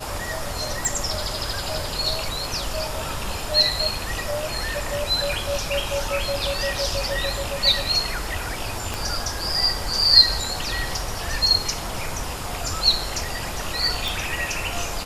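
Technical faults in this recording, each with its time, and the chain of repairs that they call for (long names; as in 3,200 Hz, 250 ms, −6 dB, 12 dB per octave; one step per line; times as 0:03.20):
0:00.85: click
0:08.94: click
0:14.08: click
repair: click removal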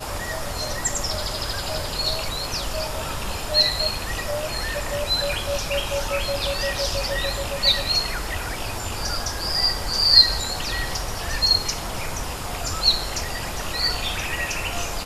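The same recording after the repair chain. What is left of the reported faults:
0:08.94: click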